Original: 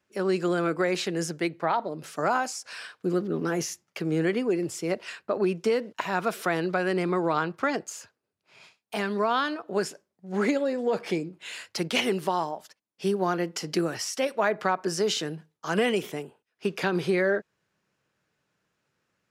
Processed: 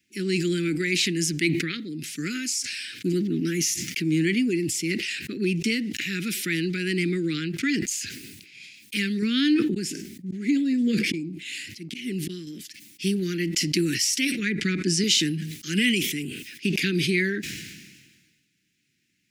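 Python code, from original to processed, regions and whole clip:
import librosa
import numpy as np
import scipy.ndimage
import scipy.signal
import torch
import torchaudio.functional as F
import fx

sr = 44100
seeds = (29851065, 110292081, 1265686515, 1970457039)

y = fx.chain(x, sr, fx.auto_swell(attack_ms=662.0),
    fx.peak_eq(hz=240.0, db=7.5, octaves=3.0), at=(9.22, 12.47))
y = fx.chain(y, sr, fx.lowpass(hz=10000.0, slope=24),
    fx.low_shelf(hz=230.0, db=8.5), at=(14.39, 15.04))
y = scipy.signal.sosfilt(scipy.signal.ellip(3, 1.0, 60, [300.0, 2100.0], 'bandstop', fs=sr, output='sos'), y)
y = fx.low_shelf(y, sr, hz=130.0, db=-10.5)
y = fx.sustainer(y, sr, db_per_s=39.0)
y = y * 10.0 ** (9.0 / 20.0)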